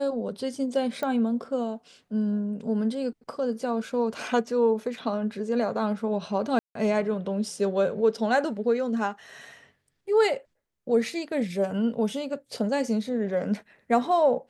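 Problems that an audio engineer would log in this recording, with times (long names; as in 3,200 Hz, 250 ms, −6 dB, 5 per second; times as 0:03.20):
0:01.03: click −17 dBFS
0:06.59–0:06.75: drop-out 163 ms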